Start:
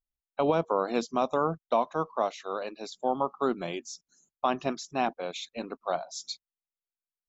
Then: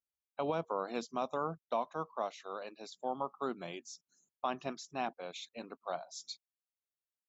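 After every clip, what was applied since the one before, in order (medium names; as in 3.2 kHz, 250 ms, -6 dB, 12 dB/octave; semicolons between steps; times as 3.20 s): high-pass 77 Hz; dynamic bell 330 Hz, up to -3 dB, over -40 dBFS, Q 0.75; trim -7.5 dB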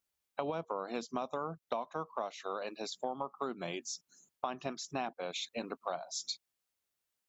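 compression 5:1, threshold -43 dBFS, peak gain reduction 13 dB; trim +9 dB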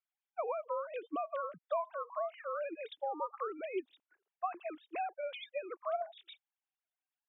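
formants replaced by sine waves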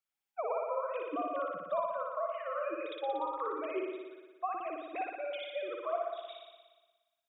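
flutter echo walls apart 10.1 m, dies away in 1.3 s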